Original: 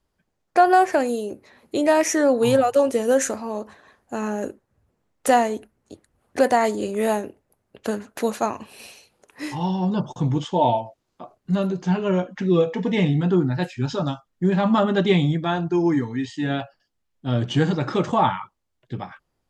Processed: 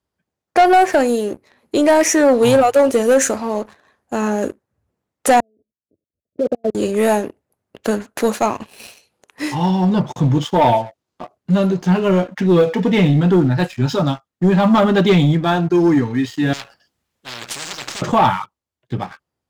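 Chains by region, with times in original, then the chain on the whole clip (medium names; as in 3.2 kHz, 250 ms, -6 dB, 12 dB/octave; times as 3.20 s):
5.40–6.75 s: steep low-pass 650 Hz 96 dB/octave + level held to a coarse grid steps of 23 dB + upward expansion, over -44 dBFS
16.53–18.02 s: valve stage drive 21 dB, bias 0.7 + spectrum-flattening compressor 10:1
whole clip: high-pass 56 Hz 24 dB/octave; waveshaping leveller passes 2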